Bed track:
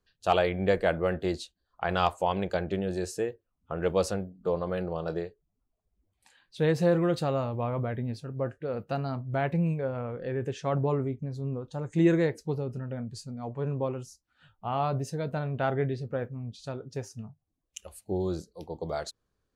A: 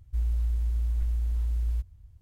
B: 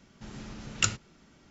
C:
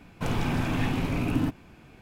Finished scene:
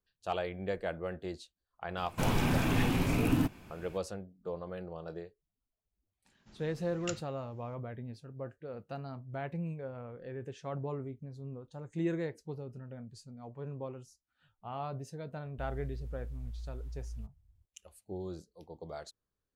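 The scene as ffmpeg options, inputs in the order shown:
-filter_complex "[0:a]volume=-10.5dB[a];[3:a]crystalizer=i=1:c=0,atrim=end=2.01,asetpts=PTS-STARTPTS,volume=-2dB,afade=t=in:d=0.004:c=hsin,afade=t=out:st=2.006:d=0.004:c=hsin,adelay=1970[b];[2:a]atrim=end=1.5,asetpts=PTS-STARTPTS,volume=-14.5dB,afade=t=in:d=0.004:c=hsin,afade=t=out:st=1.496:d=0.004:c=hsin,adelay=6250[c];[1:a]atrim=end=2.21,asetpts=PTS-STARTPTS,volume=-14.5dB,afade=t=in:d=0.004:c=hsin,afade=t=out:st=2.206:d=0.004:c=hsin,adelay=15450[d];[a][b][c][d]amix=inputs=4:normalize=0"

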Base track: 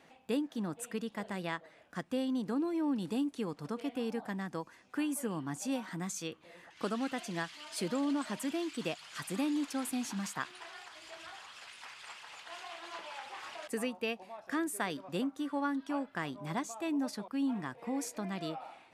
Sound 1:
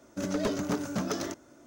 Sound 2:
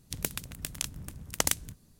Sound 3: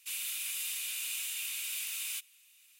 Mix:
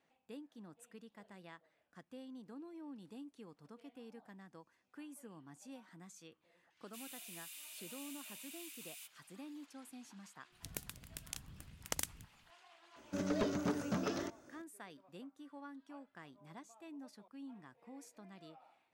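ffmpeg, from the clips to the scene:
-filter_complex "[0:a]volume=-17.5dB[a];[1:a]acrossover=split=4600[b][c];[c]acompressor=threshold=-48dB:ratio=4:attack=1:release=60[d];[b][d]amix=inputs=2:normalize=0[e];[3:a]atrim=end=2.79,asetpts=PTS-STARTPTS,volume=-15dB,afade=t=in:d=0.004:c=hsin,afade=t=out:st=2.786:d=0.004:c=hsin,adelay=6870[f];[2:a]atrim=end=1.99,asetpts=PTS-STARTPTS,volume=-12dB,afade=t=in:d=0.004:c=hsin,afade=t=out:st=1.986:d=0.004:c=hsin,adelay=10520[g];[e]atrim=end=1.66,asetpts=PTS-STARTPTS,volume=-5.5dB,afade=t=in:d=0.004:c=hsin,afade=t=out:st=1.656:d=0.004:c=hsin,adelay=12960[h];[a][f][g][h]amix=inputs=4:normalize=0"

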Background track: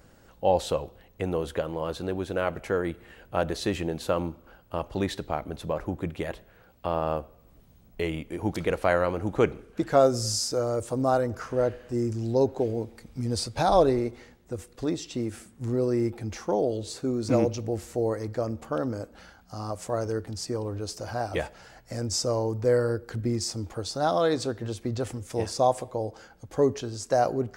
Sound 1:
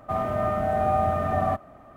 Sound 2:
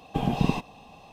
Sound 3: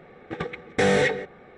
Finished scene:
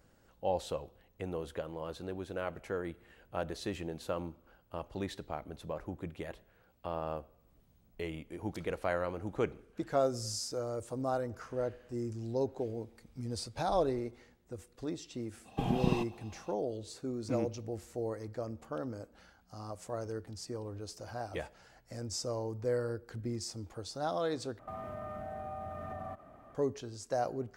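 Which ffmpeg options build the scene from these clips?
-filter_complex "[0:a]volume=-10dB[a];[1:a]acompressor=threshold=-32dB:ratio=6:attack=3.2:release=140:knee=1:detection=peak[b];[a]asplit=2[c][d];[c]atrim=end=24.594[e];[b]atrim=end=1.96,asetpts=PTS-STARTPTS,volume=-7dB[f];[d]atrim=start=26.546[g];[2:a]atrim=end=1.12,asetpts=PTS-STARTPTS,volume=-6.5dB,afade=t=in:d=0.05,afade=t=out:st=1.07:d=0.05,adelay=15430[h];[e][f]acrossfade=d=0.004:c1=hsin:c2=hsin[i];[i][g]acrossfade=d=0.004:c1=hsin:c2=hsin[j];[j][h]amix=inputs=2:normalize=0"

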